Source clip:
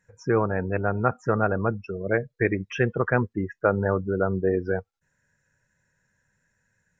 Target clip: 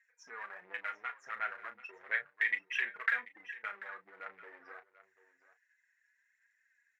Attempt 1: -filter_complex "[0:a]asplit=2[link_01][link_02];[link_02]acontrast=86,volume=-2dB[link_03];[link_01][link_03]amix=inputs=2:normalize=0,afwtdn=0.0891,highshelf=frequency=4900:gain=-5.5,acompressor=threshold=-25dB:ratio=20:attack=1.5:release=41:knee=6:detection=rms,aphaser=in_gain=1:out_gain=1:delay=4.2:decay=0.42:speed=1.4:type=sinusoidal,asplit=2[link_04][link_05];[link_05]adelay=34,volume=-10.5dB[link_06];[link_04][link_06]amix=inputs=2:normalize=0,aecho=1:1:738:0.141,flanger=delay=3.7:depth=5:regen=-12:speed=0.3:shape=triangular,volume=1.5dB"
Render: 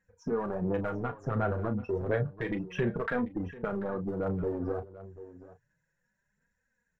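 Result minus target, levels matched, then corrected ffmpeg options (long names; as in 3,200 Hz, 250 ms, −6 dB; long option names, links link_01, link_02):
2,000 Hz band −10.5 dB
-filter_complex "[0:a]asplit=2[link_01][link_02];[link_02]acontrast=86,volume=-2dB[link_03];[link_01][link_03]amix=inputs=2:normalize=0,afwtdn=0.0891,highshelf=frequency=4900:gain=-5.5,acompressor=threshold=-25dB:ratio=20:attack=1.5:release=41:knee=6:detection=rms,highpass=frequency=2000:width_type=q:width=4.6,aphaser=in_gain=1:out_gain=1:delay=4.2:decay=0.42:speed=1.4:type=sinusoidal,asplit=2[link_04][link_05];[link_05]adelay=34,volume=-10.5dB[link_06];[link_04][link_06]amix=inputs=2:normalize=0,aecho=1:1:738:0.141,flanger=delay=3.7:depth=5:regen=-12:speed=0.3:shape=triangular,volume=1.5dB"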